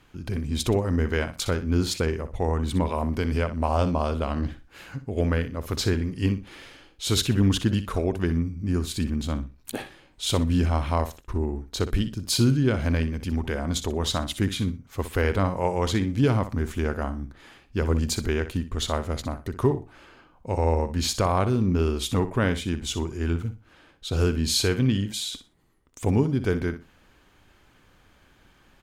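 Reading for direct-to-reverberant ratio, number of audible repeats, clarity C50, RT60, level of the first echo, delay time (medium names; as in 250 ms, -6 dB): no reverb, 2, no reverb, no reverb, -12.0 dB, 61 ms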